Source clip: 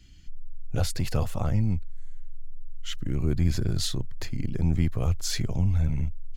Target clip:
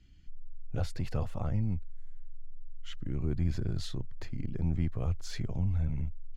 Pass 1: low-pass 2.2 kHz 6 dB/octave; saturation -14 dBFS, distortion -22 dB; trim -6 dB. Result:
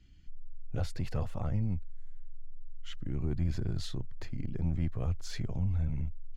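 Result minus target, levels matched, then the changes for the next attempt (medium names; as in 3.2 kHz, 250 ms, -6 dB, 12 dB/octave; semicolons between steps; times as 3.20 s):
saturation: distortion +13 dB
change: saturation -6.5 dBFS, distortion -35 dB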